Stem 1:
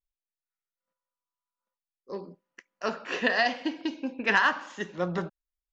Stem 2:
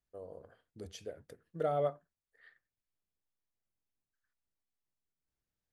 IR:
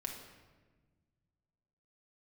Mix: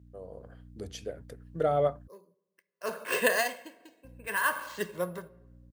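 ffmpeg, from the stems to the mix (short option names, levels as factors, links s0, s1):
-filter_complex "[0:a]aecho=1:1:1.9:0.58,acrusher=samples=4:mix=1:aa=0.000001,aeval=exprs='val(0)*pow(10,-22*(0.5-0.5*cos(2*PI*0.63*n/s))/20)':c=same,volume=0.631,asplit=3[s0][s1][s2];[s1]volume=0.188[s3];[1:a]aeval=exprs='val(0)+0.002*(sin(2*PI*60*n/s)+sin(2*PI*2*60*n/s)/2+sin(2*PI*3*60*n/s)/3+sin(2*PI*4*60*n/s)/4+sin(2*PI*5*60*n/s)/5)':c=same,volume=1.26,asplit=3[s4][s5][s6];[s4]atrim=end=2.08,asetpts=PTS-STARTPTS,afade=t=out:st=2.076:d=0.004:c=hsin[s7];[s5]atrim=start=2.08:end=4.04,asetpts=PTS-STARTPTS,volume=0[s8];[s6]atrim=start=4.04,asetpts=PTS-STARTPTS,afade=t=in:d=0.004:c=hsin[s9];[s7][s8][s9]concat=n=3:v=0:a=1[s10];[s2]apad=whole_len=252264[s11];[s10][s11]sidechaincompress=threshold=0.002:ratio=8:attack=16:release=320[s12];[2:a]atrim=start_sample=2205[s13];[s3][s13]afir=irnorm=-1:irlink=0[s14];[s0][s12][s14]amix=inputs=3:normalize=0,highpass=51,dynaudnorm=f=160:g=5:m=1.58"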